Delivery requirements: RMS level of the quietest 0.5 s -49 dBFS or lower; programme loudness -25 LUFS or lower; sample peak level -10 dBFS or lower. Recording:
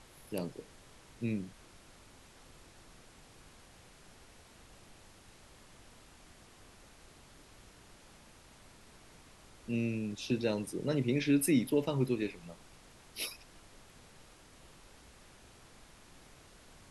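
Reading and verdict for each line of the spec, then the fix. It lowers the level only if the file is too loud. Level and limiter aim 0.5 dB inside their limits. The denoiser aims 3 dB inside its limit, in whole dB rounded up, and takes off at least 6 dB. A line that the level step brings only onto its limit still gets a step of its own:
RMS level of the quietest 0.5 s -58 dBFS: OK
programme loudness -34.0 LUFS: OK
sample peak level -18.0 dBFS: OK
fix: none

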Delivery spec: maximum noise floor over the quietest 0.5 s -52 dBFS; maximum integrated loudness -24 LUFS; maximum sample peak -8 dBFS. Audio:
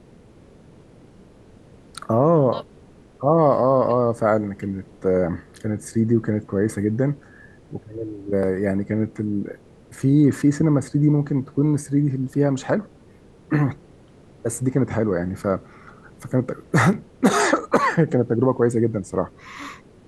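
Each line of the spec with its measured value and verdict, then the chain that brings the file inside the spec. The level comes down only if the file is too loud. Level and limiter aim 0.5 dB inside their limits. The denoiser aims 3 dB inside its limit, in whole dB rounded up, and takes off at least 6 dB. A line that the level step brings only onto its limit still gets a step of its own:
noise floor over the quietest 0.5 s -49 dBFS: fail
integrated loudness -21.5 LUFS: fail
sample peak -3.5 dBFS: fail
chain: denoiser 6 dB, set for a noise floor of -49 dBFS; gain -3 dB; limiter -8.5 dBFS

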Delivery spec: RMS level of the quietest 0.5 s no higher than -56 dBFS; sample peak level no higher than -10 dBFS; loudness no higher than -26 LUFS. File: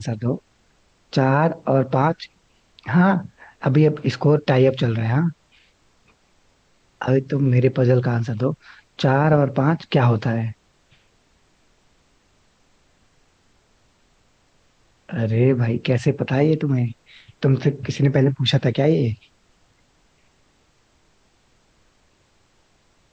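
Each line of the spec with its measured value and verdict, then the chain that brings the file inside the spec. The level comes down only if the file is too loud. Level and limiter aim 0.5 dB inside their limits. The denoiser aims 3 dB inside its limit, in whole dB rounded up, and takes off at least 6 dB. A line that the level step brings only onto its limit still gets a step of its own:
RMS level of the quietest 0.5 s -61 dBFS: OK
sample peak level -6.0 dBFS: fail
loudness -20.0 LUFS: fail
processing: gain -6.5 dB

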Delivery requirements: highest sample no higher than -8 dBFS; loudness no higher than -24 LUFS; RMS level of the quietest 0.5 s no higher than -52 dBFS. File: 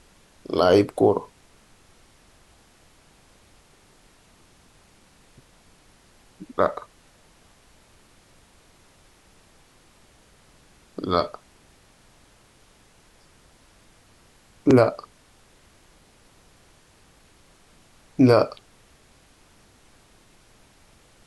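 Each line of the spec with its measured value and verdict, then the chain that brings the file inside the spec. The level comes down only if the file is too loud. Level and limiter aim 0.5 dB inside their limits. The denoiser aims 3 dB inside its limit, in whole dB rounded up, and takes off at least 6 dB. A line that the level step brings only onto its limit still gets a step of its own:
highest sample -5.5 dBFS: fail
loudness -21.0 LUFS: fail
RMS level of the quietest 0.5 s -56 dBFS: OK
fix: gain -3.5 dB

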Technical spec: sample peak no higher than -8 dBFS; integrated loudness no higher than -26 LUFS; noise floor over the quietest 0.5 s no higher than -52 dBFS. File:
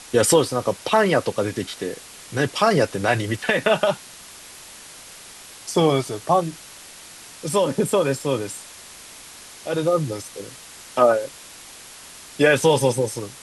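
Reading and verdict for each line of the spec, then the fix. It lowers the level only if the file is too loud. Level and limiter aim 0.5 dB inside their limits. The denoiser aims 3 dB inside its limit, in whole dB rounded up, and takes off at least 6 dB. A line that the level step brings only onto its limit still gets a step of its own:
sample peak -4.5 dBFS: fail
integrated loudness -21.0 LUFS: fail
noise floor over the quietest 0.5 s -42 dBFS: fail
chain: denoiser 8 dB, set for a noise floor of -42 dBFS; gain -5.5 dB

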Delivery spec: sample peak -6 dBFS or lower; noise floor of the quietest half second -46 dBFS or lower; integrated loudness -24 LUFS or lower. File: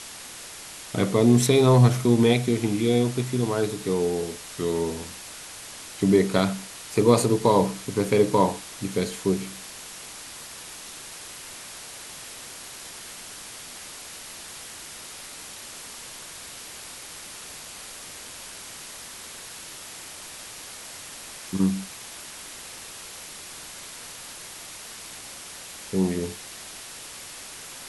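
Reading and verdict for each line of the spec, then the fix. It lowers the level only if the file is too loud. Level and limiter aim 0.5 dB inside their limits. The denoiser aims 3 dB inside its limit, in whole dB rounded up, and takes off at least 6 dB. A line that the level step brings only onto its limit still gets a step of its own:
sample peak -5.5 dBFS: fail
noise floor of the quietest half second -41 dBFS: fail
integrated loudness -23.0 LUFS: fail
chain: denoiser 7 dB, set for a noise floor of -41 dBFS; gain -1.5 dB

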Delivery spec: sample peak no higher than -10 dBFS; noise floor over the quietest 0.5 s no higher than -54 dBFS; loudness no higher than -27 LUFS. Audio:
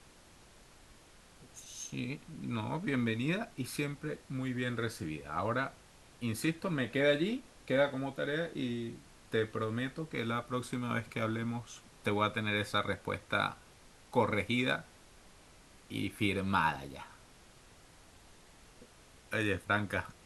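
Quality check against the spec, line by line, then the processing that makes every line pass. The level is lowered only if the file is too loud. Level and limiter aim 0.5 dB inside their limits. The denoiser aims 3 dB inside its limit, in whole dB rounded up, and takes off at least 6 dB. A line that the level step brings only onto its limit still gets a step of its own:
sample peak -15.0 dBFS: OK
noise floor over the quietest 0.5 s -59 dBFS: OK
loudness -35.0 LUFS: OK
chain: none

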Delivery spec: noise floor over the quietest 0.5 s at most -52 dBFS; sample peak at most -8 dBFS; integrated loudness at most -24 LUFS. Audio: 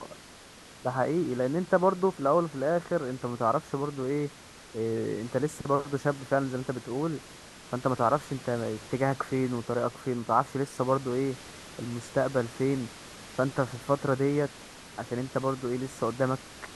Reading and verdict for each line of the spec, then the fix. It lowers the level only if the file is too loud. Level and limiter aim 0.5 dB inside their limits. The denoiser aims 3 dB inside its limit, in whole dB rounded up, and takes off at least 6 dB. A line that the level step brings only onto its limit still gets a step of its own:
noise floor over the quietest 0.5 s -50 dBFS: fail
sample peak -9.5 dBFS: OK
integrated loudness -29.5 LUFS: OK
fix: denoiser 6 dB, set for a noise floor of -50 dBFS

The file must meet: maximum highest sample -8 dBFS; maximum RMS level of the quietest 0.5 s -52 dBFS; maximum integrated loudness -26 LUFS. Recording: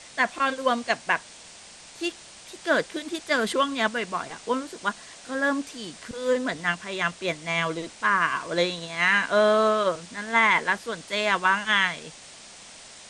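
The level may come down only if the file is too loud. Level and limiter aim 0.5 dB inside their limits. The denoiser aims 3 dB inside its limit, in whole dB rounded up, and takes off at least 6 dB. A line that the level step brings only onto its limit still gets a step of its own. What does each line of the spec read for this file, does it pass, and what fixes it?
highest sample -7.0 dBFS: fail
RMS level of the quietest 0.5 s -47 dBFS: fail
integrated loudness -25.0 LUFS: fail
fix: denoiser 7 dB, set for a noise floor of -47 dBFS; gain -1.5 dB

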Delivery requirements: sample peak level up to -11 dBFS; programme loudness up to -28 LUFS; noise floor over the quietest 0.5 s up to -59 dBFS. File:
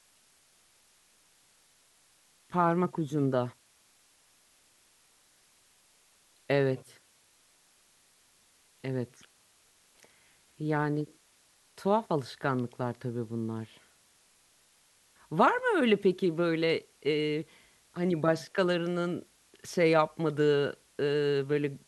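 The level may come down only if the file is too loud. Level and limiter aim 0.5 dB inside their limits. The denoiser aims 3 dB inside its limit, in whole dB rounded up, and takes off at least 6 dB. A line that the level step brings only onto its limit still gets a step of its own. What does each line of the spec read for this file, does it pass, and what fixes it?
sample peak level -10.0 dBFS: fail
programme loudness -29.5 LUFS: OK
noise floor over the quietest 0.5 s -65 dBFS: OK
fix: limiter -11.5 dBFS

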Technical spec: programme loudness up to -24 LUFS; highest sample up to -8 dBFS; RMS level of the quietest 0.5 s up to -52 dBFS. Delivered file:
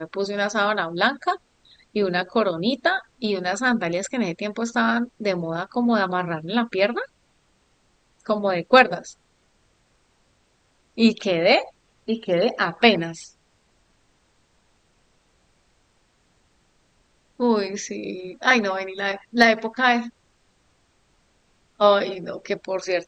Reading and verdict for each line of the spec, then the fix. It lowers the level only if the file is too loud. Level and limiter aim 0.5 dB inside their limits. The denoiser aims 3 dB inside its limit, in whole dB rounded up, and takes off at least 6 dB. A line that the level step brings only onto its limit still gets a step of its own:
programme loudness -22.0 LUFS: fail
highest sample -2.5 dBFS: fail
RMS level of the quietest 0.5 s -64 dBFS: OK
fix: gain -2.5 dB; limiter -8.5 dBFS

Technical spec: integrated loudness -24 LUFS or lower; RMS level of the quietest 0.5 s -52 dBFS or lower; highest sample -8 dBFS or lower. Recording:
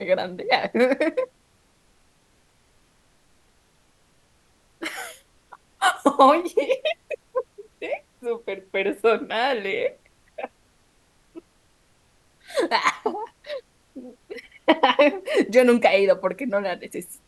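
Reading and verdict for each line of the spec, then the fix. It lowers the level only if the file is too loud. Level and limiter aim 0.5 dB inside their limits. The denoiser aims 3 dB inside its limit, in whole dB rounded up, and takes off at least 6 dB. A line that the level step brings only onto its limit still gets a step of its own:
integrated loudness -22.5 LUFS: fail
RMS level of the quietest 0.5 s -62 dBFS: OK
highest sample -2.5 dBFS: fail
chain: gain -2 dB; limiter -8.5 dBFS

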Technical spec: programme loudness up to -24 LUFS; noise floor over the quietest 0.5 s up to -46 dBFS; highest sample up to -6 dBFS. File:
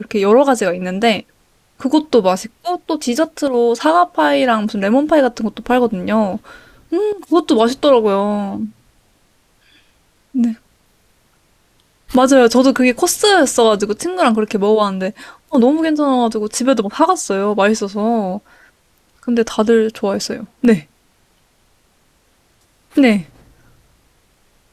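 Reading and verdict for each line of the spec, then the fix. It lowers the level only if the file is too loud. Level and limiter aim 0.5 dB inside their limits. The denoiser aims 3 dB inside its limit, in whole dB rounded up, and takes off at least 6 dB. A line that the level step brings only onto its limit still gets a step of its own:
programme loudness -15.0 LUFS: fail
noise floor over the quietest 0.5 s -57 dBFS: OK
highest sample -1.5 dBFS: fail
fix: gain -9.5 dB

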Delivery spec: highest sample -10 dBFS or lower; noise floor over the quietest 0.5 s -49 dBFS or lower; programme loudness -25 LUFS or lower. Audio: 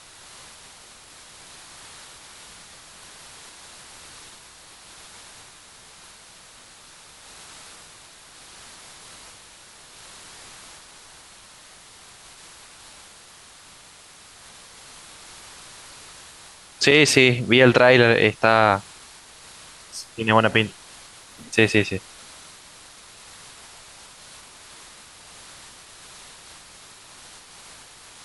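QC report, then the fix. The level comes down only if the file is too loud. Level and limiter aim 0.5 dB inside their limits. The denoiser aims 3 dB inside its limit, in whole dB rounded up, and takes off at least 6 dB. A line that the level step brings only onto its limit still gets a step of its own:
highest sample -1.5 dBFS: fail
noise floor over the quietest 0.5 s -48 dBFS: fail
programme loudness -17.5 LUFS: fail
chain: gain -8 dB; limiter -10.5 dBFS

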